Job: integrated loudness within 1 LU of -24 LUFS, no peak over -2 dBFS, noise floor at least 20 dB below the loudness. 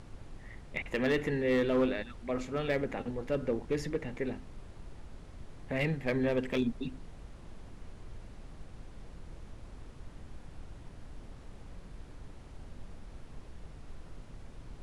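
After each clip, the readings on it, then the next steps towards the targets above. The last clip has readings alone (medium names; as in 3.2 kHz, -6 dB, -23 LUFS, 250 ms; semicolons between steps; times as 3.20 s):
clipped samples 0.3%; clipping level -22.0 dBFS; noise floor -50 dBFS; noise floor target -53 dBFS; loudness -33.0 LUFS; peak level -22.0 dBFS; loudness target -24.0 LUFS
-> clip repair -22 dBFS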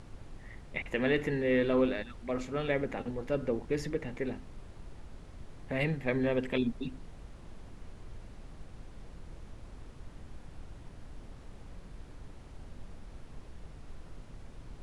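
clipped samples 0.0%; noise floor -50 dBFS; noise floor target -53 dBFS
-> noise print and reduce 6 dB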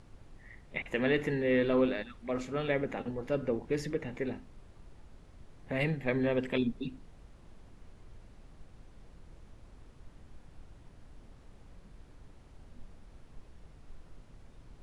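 noise floor -56 dBFS; loudness -32.5 LUFS; peak level -15.0 dBFS; loudness target -24.0 LUFS
-> trim +8.5 dB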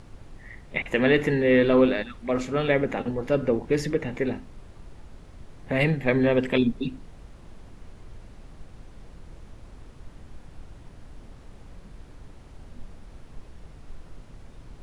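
loudness -24.0 LUFS; peak level -6.5 dBFS; noise floor -48 dBFS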